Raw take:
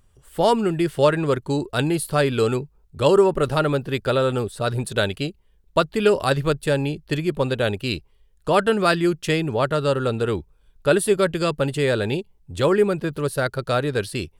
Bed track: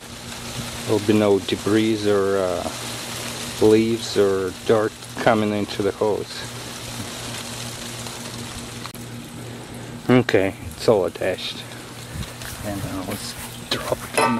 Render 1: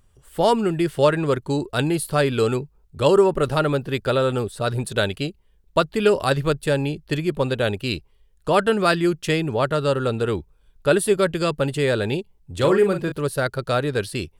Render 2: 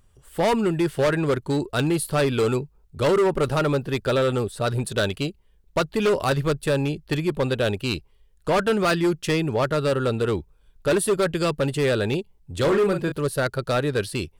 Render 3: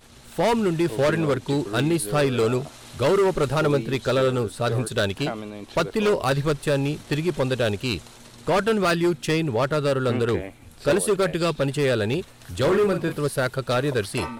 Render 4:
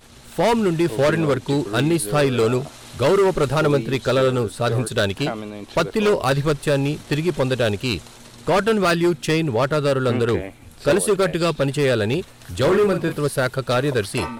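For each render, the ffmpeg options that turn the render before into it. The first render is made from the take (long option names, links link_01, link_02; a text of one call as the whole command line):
ffmpeg -i in.wav -filter_complex "[0:a]asettb=1/sr,asplit=3[link_01][link_02][link_03];[link_01]atrim=end=12.544[link_04];[link_02]atrim=start=12.54:end=13.12,asetpts=PTS-STARTPTS,afade=type=in:duration=0.004:curve=qsin,afade=type=out:start_time=0.576:duration=0.004:curve=qsin,asplit=2[link_05][link_06];[link_06]adelay=41,volume=-7dB[link_07];[link_05][link_07]amix=inputs=2:normalize=0,atrim=end_sample=25578[link_08];[link_03]atrim=start=13.116[link_09];[link_04][link_08]acrossfade=duration=0.004:curve1=hsin:curve2=qsin[link_10];[link_10][link_09]acrossfade=duration=0.004:curve1=qsin:curve2=hsin" out.wav
ffmpeg -i in.wav -af "asoftclip=type=hard:threshold=-16dB" out.wav
ffmpeg -i in.wav -i bed.wav -filter_complex "[1:a]volume=-14dB[link_01];[0:a][link_01]amix=inputs=2:normalize=0" out.wav
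ffmpeg -i in.wav -af "volume=3dB" out.wav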